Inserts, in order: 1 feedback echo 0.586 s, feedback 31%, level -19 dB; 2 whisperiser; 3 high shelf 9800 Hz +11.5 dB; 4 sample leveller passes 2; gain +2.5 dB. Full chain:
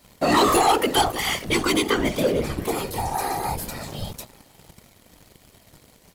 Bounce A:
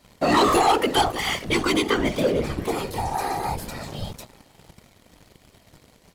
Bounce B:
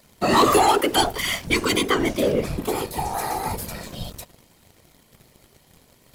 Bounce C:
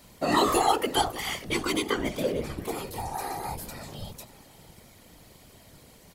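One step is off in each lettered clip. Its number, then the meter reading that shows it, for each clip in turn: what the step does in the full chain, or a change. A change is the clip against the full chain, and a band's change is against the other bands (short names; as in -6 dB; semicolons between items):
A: 3, 8 kHz band -4.0 dB; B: 1, momentary loudness spread change +2 LU; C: 4, crest factor change +6.0 dB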